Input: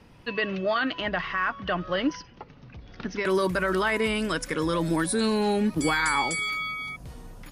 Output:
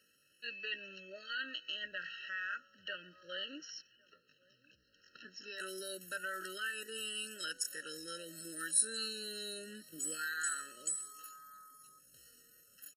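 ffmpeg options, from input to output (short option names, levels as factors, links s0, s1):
-filter_complex "[0:a]equalizer=f=4500:w=8:g=-5,atempo=0.58,aderivative,asplit=2[s0][s1];[s1]adelay=1108,volume=0.0501,highshelf=f=4000:g=-24.9[s2];[s0][s2]amix=inputs=2:normalize=0,afftfilt=real='re*eq(mod(floor(b*sr/1024/640),2),0)':imag='im*eq(mod(floor(b*sr/1024/640),2),0)':win_size=1024:overlap=0.75,volume=1.19"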